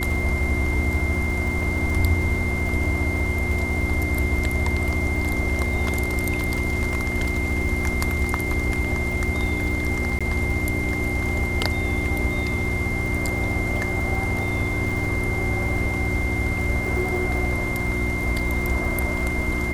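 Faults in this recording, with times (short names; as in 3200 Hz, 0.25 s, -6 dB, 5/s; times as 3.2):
crackle 61/s -30 dBFS
hum 60 Hz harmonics 6 -29 dBFS
tone 2100 Hz -27 dBFS
10.19–10.21 gap 16 ms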